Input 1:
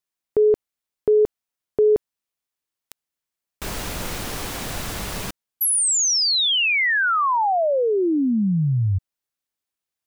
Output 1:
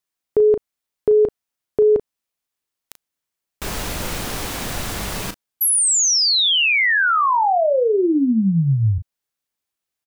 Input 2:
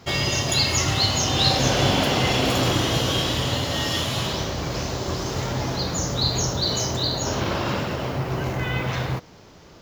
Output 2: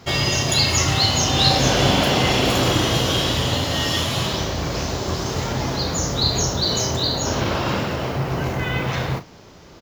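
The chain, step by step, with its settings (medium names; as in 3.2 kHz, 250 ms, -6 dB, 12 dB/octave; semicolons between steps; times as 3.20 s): doubling 36 ms -10.5 dB; trim +2.5 dB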